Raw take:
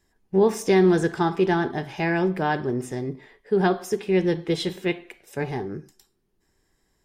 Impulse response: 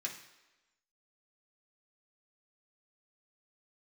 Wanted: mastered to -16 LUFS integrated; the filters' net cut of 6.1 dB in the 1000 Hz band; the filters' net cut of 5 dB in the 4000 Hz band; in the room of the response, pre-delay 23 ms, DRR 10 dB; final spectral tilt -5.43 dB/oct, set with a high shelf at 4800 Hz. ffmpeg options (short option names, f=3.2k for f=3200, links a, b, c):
-filter_complex "[0:a]equalizer=f=1k:t=o:g=-8.5,equalizer=f=4k:t=o:g=-3.5,highshelf=f=4.8k:g=-5,asplit=2[a][b];[1:a]atrim=start_sample=2205,adelay=23[c];[b][c]afir=irnorm=-1:irlink=0,volume=-10.5dB[d];[a][d]amix=inputs=2:normalize=0,volume=9dB"